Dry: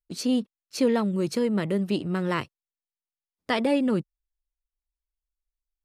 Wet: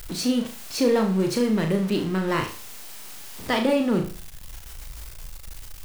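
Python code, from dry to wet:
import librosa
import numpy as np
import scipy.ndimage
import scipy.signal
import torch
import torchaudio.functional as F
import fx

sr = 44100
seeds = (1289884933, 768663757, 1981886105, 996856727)

y = x + 0.5 * 10.0 ** (-31.5 / 20.0) * np.sign(x)
y = fx.room_flutter(y, sr, wall_m=6.3, rt60_s=0.4)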